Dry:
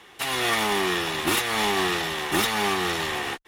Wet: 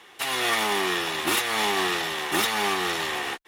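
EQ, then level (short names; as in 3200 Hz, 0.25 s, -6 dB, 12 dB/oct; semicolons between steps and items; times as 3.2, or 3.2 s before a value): low shelf 170 Hz -11.5 dB; 0.0 dB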